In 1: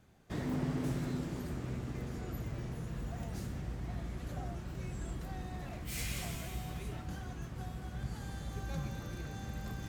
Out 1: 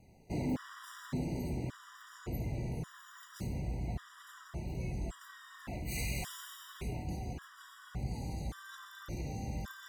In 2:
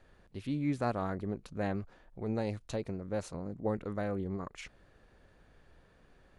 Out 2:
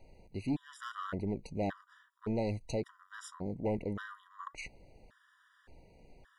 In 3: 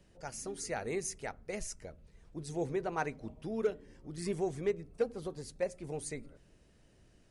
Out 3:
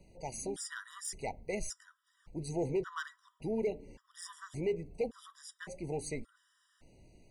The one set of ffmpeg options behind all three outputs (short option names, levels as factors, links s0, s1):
-af "asoftclip=type=hard:threshold=0.0376,flanger=delay=1.1:depth=3.1:regen=87:speed=0.8:shape=triangular,asoftclip=type=tanh:threshold=0.0211,afftfilt=real='re*gt(sin(2*PI*0.88*pts/sr)*(1-2*mod(floor(b*sr/1024/970),2)),0)':imag='im*gt(sin(2*PI*0.88*pts/sr)*(1-2*mod(floor(b*sr/1024/970),2)),0)':win_size=1024:overlap=0.75,volume=2.66"